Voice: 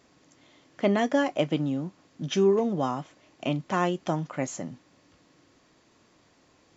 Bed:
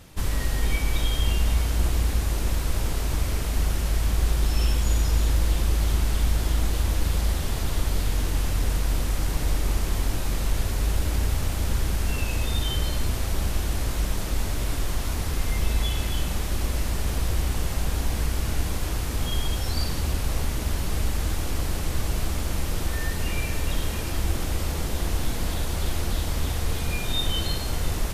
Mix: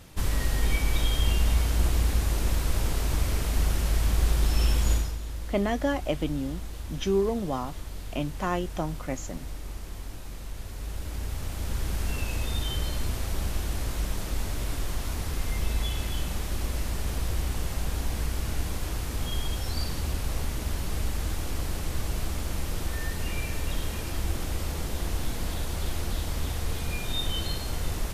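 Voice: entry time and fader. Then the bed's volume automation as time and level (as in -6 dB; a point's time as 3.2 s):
4.70 s, -3.0 dB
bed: 4.93 s -1 dB
5.18 s -13.5 dB
10.55 s -13.5 dB
12 s -4 dB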